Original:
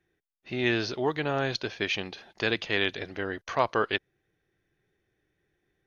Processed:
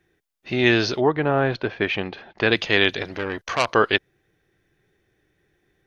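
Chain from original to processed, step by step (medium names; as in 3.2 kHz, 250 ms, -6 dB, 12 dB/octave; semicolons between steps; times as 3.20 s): 1.00–2.50 s: low-pass 1.5 kHz -> 2.8 kHz 12 dB/octave; 3.02–3.68 s: transformer saturation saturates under 3.4 kHz; trim +8.5 dB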